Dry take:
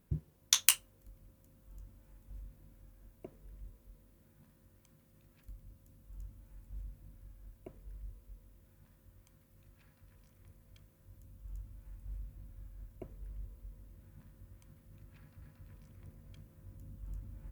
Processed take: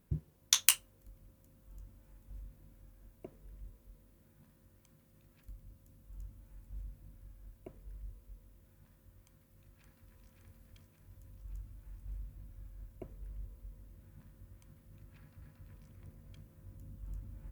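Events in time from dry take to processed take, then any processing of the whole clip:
9.26–10.29 echo throw 0.57 s, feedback 65%, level -4 dB

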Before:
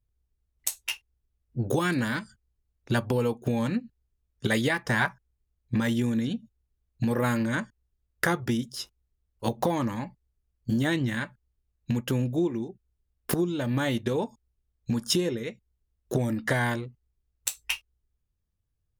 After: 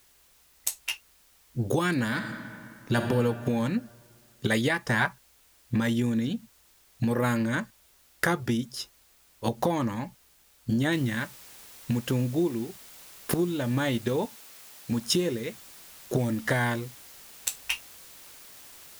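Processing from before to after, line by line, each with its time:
2.07–3 reverb throw, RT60 2.3 s, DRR 3.5 dB
10.92 noise floor step -61 dB -49 dB
14.25–14.92 HPF 230 Hz 6 dB/oct

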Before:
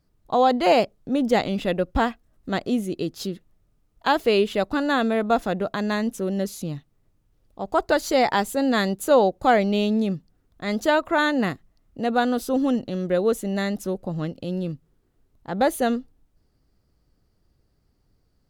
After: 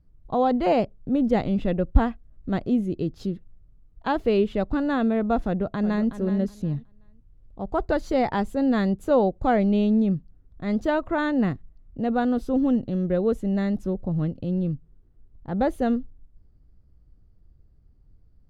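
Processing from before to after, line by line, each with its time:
5.44–6.13 echo throw 0.37 s, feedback 20%, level -11 dB
whole clip: RIAA curve playback; gain -5.5 dB

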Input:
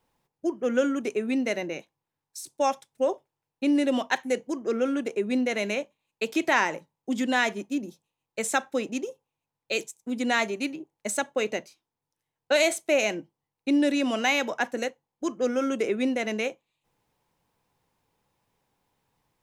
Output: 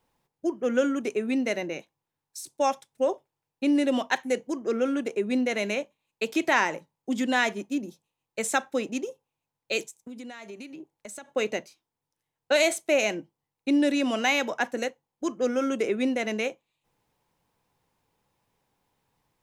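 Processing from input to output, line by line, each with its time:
9.81–11.31 compressor 12:1, threshold -37 dBFS

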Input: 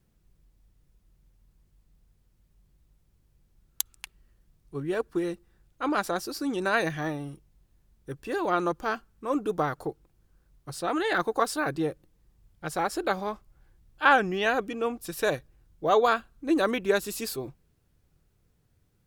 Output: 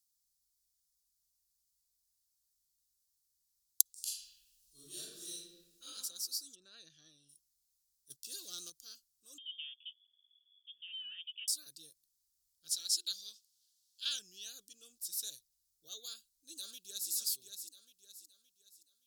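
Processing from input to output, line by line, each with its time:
3.93–5.86 reverb throw, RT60 1.3 s, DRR -12 dB
6.54–7.28 LPF 1700 Hz -> 4400 Hz
8.1–8.7 sample leveller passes 2
9.38–11.48 inverted band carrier 3400 Hz
12.71–14.19 weighting filter D
16.06–17.11 echo throw 0.57 s, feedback 40%, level -6.5 dB
whole clip: inverse Chebyshev high-pass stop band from 2300 Hz, stop band 40 dB; gain +2 dB

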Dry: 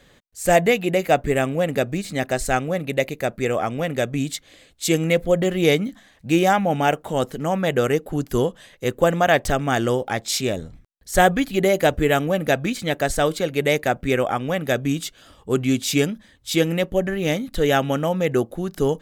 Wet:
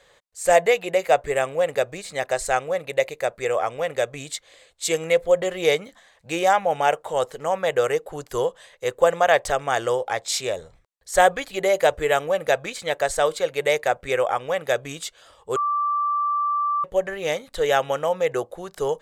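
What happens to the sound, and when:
15.56–16.84 bleep 1170 Hz -20.5 dBFS
whole clip: ten-band EQ 250 Hz -11 dB, 500 Hz +12 dB, 1000 Hz +10 dB, 2000 Hz +6 dB, 4000 Hz +6 dB, 8000 Hz +10 dB; gain -11 dB

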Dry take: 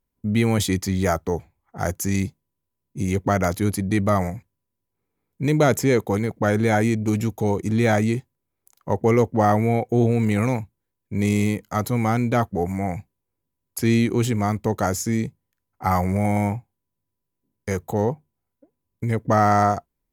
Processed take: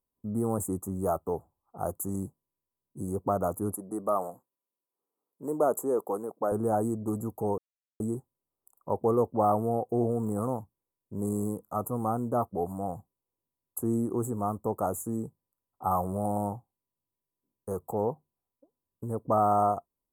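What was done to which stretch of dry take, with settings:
3.74–6.52 HPF 310 Hz
7.58–8 mute
whole clip: Chebyshev band-stop 1200–8000 Hz, order 4; low shelf 260 Hz -10 dB; gain -3.5 dB

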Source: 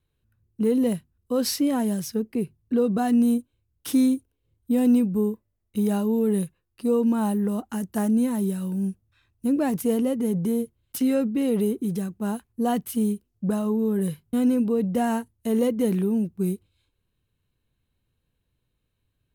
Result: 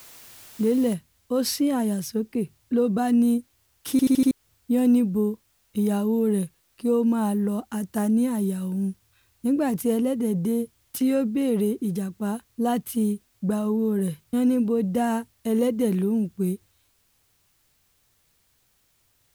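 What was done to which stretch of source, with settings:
0.94 noise floor step -47 dB -67 dB
3.91 stutter in place 0.08 s, 5 plays

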